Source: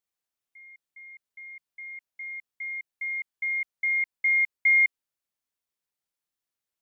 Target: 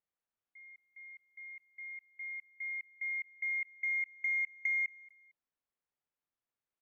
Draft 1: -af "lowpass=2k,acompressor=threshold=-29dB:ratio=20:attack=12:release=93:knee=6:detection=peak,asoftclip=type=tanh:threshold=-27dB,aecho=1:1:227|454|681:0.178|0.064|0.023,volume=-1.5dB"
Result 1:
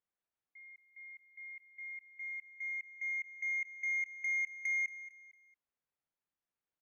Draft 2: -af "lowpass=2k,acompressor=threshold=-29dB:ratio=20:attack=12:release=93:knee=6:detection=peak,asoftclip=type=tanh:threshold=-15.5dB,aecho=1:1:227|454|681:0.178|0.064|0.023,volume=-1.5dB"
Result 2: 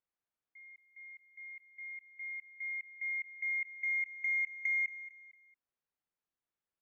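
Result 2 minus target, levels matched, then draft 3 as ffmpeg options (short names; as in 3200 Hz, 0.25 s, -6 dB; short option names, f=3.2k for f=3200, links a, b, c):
echo-to-direct +8 dB
-af "lowpass=2k,acompressor=threshold=-29dB:ratio=20:attack=12:release=93:knee=6:detection=peak,asoftclip=type=tanh:threshold=-15.5dB,aecho=1:1:227|454:0.0708|0.0255,volume=-1.5dB"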